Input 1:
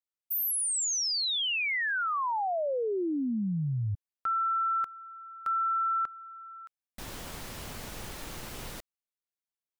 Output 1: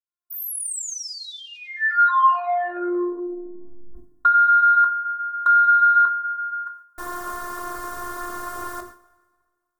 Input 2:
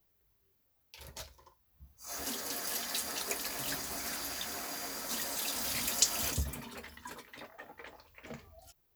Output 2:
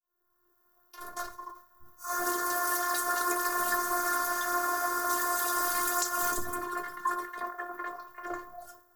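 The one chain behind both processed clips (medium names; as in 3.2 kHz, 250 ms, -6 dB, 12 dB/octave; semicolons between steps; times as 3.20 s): fade-in on the opening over 0.79 s; plate-style reverb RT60 1.7 s, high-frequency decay 0.8×, DRR 18 dB; compression, threshold -31 dBFS; FFT filter 120 Hz 0 dB, 500 Hz +10 dB, 1.2 kHz +7 dB, 2.6 kHz -10 dB, 8.9 kHz +4 dB; saturation -21 dBFS; robot voice 354 Hz; high-order bell 1.4 kHz +11.5 dB 1 oct; hum notches 60/120/180/240/300/360 Hz; flange 0.27 Hz, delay 4.3 ms, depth 9.3 ms, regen -53%; decay stretcher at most 120 dB/s; trim +8.5 dB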